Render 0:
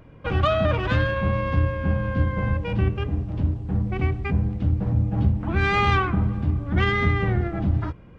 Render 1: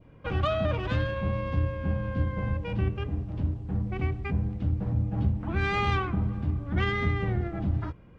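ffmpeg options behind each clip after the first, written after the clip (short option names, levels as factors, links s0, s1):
-af "adynamicequalizer=threshold=0.0141:dfrequency=1500:dqfactor=1.2:tfrequency=1500:tqfactor=1.2:attack=5:release=100:ratio=0.375:range=2.5:mode=cutabove:tftype=bell,volume=0.531"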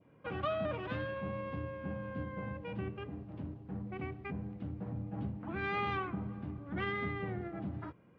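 -af "highpass=160,lowpass=3000,volume=0.473"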